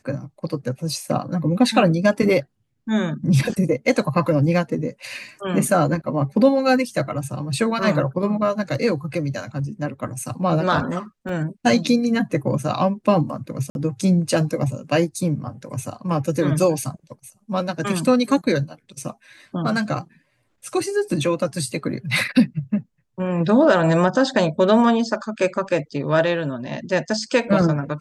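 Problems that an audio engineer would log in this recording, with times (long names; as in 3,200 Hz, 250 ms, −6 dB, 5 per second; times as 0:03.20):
0:11.29: drop-out 2.2 ms
0:13.70–0:13.75: drop-out 51 ms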